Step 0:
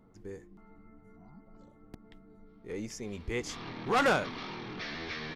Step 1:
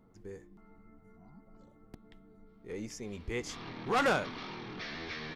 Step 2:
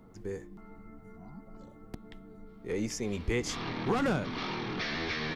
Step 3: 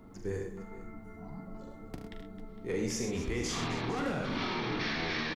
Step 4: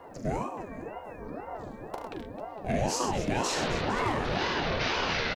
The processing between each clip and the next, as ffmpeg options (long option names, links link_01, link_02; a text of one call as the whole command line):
ffmpeg -i in.wav -af "bandreject=frequency=294.9:width_type=h:width=4,bandreject=frequency=589.8:width_type=h:width=4,bandreject=frequency=884.7:width_type=h:width=4,bandreject=frequency=1179.6:width_type=h:width=4,bandreject=frequency=1474.5:width_type=h:width=4,bandreject=frequency=1769.4:width_type=h:width=4,bandreject=frequency=2064.3:width_type=h:width=4,bandreject=frequency=2359.2:width_type=h:width=4,bandreject=frequency=2654.1:width_type=h:width=4,bandreject=frequency=2949:width_type=h:width=4,bandreject=frequency=3243.9:width_type=h:width=4,bandreject=frequency=3538.8:width_type=h:width=4,bandreject=frequency=3833.7:width_type=h:width=4,bandreject=frequency=4128.6:width_type=h:width=4,volume=-2dB" out.wav
ffmpeg -i in.wav -filter_complex "[0:a]acrossover=split=310[link_01][link_02];[link_02]acompressor=threshold=-38dB:ratio=10[link_03];[link_01][link_03]amix=inputs=2:normalize=0,volume=8dB" out.wav
ffmpeg -i in.wav -af "alimiter=level_in=5dB:limit=-24dB:level=0:latency=1:release=22,volume=-5dB,flanger=delay=2.9:depth=8:regen=-58:speed=0.9:shape=sinusoidal,aecho=1:1:42|74|104|127|263|457:0.447|0.376|0.316|0.224|0.211|0.141,volume=6dB" out.wav
ffmpeg -i in.wav -af "aeval=exprs='val(0)*sin(2*PI*480*n/s+480*0.55/2*sin(2*PI*2*n/s))':channel_layout=same,volume=7.5dB" out.wav